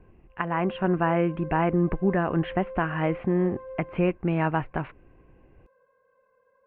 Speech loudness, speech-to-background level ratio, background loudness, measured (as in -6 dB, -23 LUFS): -26.5 LUFS, 15.5 dB, -42.0 LUFS